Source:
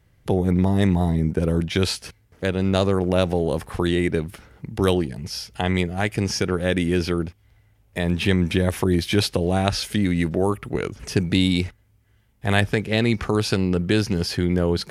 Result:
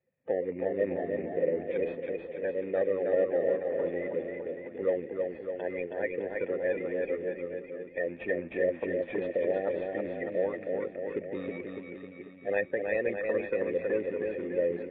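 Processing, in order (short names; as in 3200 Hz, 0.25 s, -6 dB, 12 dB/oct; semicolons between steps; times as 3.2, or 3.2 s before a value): bin magnitudes rounded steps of 30 dB; Bessel high-pass 280 Hz, order 2; in parallel at -7 dB: sample-and-hold 18×; on the sum: vocal tract filter e; bouncing-ball echo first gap 0.32 s, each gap 0.9×, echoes 5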